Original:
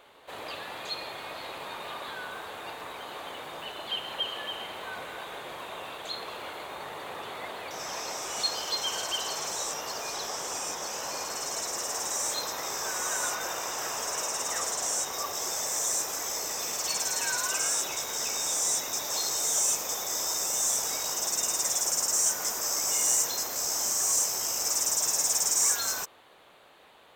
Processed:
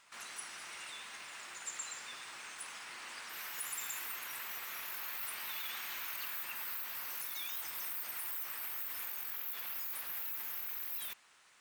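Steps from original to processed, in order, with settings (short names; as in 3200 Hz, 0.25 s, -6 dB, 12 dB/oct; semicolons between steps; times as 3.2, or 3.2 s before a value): limiter -21.5 dBFS, peak gain reduction 9 dB; speed mistake 33 rpm record played at 78 rpm; gain -8.5 dB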